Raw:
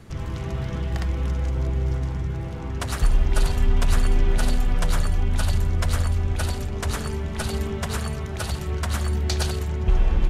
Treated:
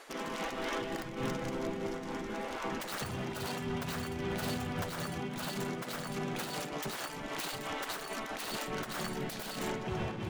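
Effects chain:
stylus tracing distortion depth 0.24 ms
gate on every frequency bin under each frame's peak −15 dB weak
downward compressor, threshold −35 dBFS, peak gain reduction 10.5 dB
brickwall limiter −32.5 dBFS, peak gain reduction 10.5 dB
amplitude modulation by smooth noise, depth 65%
level +8 dB

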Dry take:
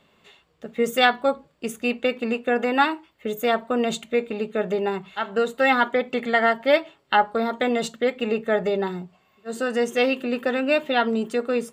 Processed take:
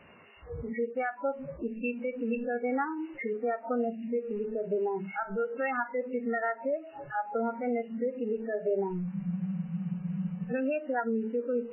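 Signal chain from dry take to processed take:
linear delta modulator 64 kbit/s, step −24.5 dBFS
downward compressor 10 to 1, threshold −23 dBFS, peak gain reduction 11.5 dB
brickwall limiter −19.5 dBFS, peak gain reduction 10 dB
noise reduction from a noise print of the clip's start 24 dB
hum removal 218.8 Hz, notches 8
frozen spectrum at 0:09.11, 1.39 s
MP3 8 kbit/s 8,000 Hz

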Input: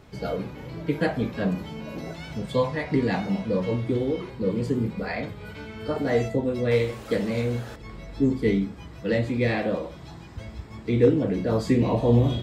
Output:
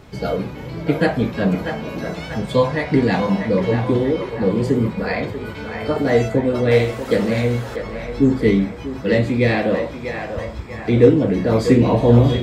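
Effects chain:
feedback echo with a band-pass in the loop 641 ms, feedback 60%, band-pass 1,100 Hz, level −5 dB
level +7 dB

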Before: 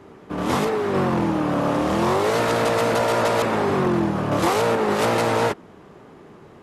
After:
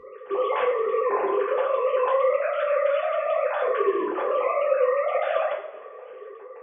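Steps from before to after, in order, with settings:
three sine waves on the formant tracks
downward compressor 2.5 to 1, threshold −29 dBFS, peak gain reduction 9.5 dB
coupled-rooms reverb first 0.45 s, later 1.9 s, from −18 dB, DRR −3.5 dB

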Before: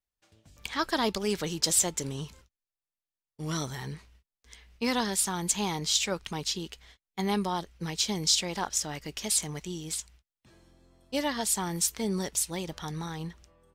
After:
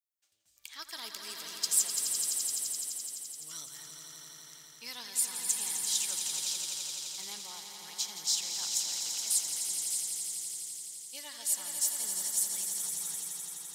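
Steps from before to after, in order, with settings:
first-order pre-emphasis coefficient 0.97
echo that builds up and dies away 85 ms, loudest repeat 5, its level −8 dB
level −3 dB

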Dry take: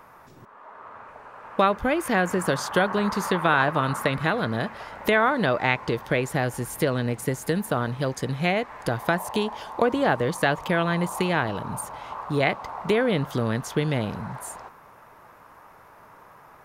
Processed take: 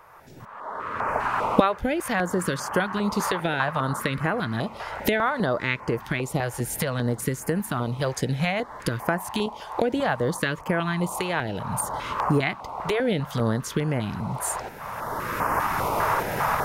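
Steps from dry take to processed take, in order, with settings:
camcorder AGC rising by 19 dB per second
0:09.46–0:10.67: downward expander −26 dBFS
notch on a step sequencer 5 Hz 230–3,700 Hz
level −1.5 dB

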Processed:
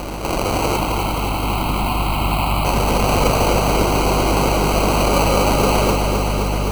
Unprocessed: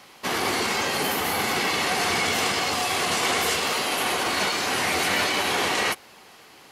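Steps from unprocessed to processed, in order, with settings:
high-shelf EQ 6,900 Hz −9 dB
auto-filter high-pass square 0.43 Hz 310–2,900 Hz
high-shelf EQ 3,400 Hz +11.5 dB
in parallel at −1 dB: compressor whose output falls as the input rises −32 dBFS, ratio −0.5
on the sum: mains hum 50 Hz, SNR 11 dB
decimation without filtering 25×
0:00.77–0:02.65: phaser with its sweep stopped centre 1,700 Hz, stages 6
feedback echo at a low word length 260 ms, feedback 80%, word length 8 bits, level −6 dB

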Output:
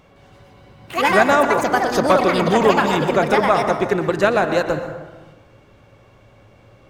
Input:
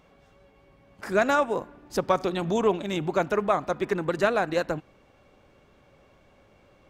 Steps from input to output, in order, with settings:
parametric band 110 Hz +11 dB 0.3 octaves
delay with pitch and tempo change per echo 162 ms, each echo +5 semitones, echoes 2
dense smooth reverb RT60 1.2 s, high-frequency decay 0.45×, pre-delay 105 ms, DRR 7.5 dB
level +6.5 dB

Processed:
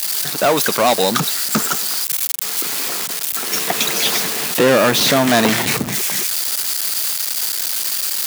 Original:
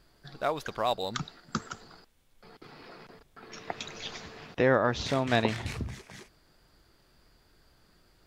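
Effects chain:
spike at every zero crossing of −27 dBFS
leveller curve on the samples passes 5
high-pass filter 160 Hz 24 dB per octave
level +2.5 dB

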